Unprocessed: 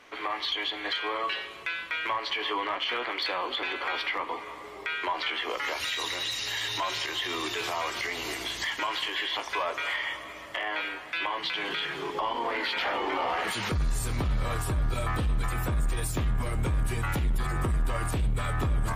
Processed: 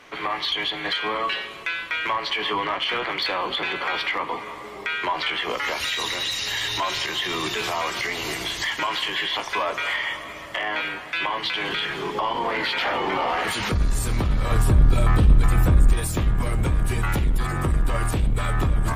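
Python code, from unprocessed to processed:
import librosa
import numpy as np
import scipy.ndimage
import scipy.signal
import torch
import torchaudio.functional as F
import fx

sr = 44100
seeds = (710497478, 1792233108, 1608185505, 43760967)

p1 = fx.octave_divider(x, sr, octaves=1, level_db=-4.0)
p2 = fx.low_shelf(p1, sr, hz=380.0, db=7.5, at=(14.51, 15.93))
p3 = 10.0 ** (-22.5 / 20.0) * np.tanh(p2 / 10.0 ** (-22.5 / 20.0))
p4 = p2 + (p3 * 10.0 ** (-6.0 / 20.0))
y = p4 * 10.0 ** (2.0 / 20.0)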